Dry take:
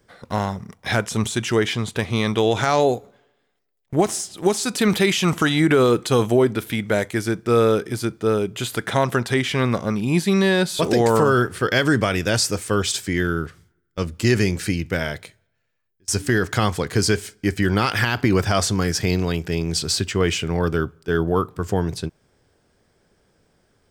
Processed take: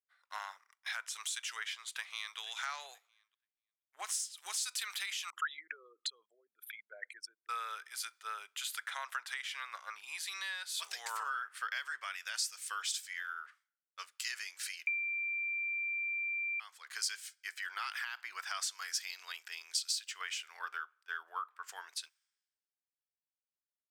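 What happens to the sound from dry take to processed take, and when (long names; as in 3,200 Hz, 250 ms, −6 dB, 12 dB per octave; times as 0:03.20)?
0:01.92–0:02.38: delay throw 480 ms, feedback 30%, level −15 dB
0:05.30–0:07.49: spectral envelope exaggerated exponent 3
0:14.87–0:16.60: beep over 2,360 Hz −7.5 dBFS
whole clip: high-pass filter 1,200 Hz 24 dB per octave; downward compressor 6 to 1, threshold −32 dBFS; multiband upward and downward expander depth 100%; level −5.5 dB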